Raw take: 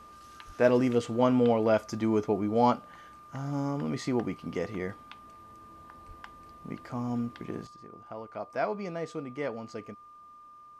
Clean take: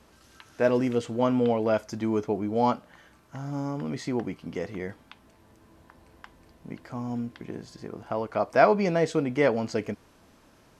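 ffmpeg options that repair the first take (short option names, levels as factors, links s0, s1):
-filter_complex "[0:a]bandreject=f=1200:w=30,asplit=3[s0][s1][s2];[s0]afade=t=out:st=0.46:d=0.02[s3];[s1]highpass=f=140:w=0.5412,highpass=f=140:w=1.3066,afade=t=in:st=0.46:d=0.02,afade=t=out:st=0.58:d=0.02[s4];[s2]afade=t=in:st=0.58:d=0.02[s5];[s3][s4][s5]amix=inputs=3:normalize=0,asplit=3[s6][s7][s8];[s6]afade=t=out:st=6.07:d=0.02[s9];[s7]highpass=f=140:w=0.5412,highpass=f=140:w=1.3066,afade=t=in:st=6.07:d=0.02,afade=t=out:st=6.19:d=0.02[s10];[s8]afade=t=in:st=6.19:d=0.02[s11];[s9][s10][s11]amix=inputs=3:normalize=0,asetnsamples=n=441:p=0,asendcmd='7.67 volume volume 11.5dB',volume=1"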